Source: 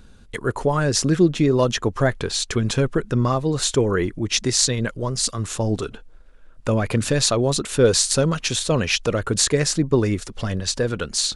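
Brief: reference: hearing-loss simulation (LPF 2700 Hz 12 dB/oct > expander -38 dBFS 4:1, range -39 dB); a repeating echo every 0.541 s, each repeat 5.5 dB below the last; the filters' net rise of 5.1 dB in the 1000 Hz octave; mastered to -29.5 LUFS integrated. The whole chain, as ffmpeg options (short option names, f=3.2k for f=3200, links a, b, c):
-af "lowpass=2.7k,equalizer=f=1k:t=o:g=6.5,aecho=1:1:541|1082|1623|2164|2705|3246|3787:0.531|0.281|0.149|0.079|0.0419|0.0222|0.0118,agate=range=-39dB:threshold=-38dB:ratio=4,volume=-9.5dB"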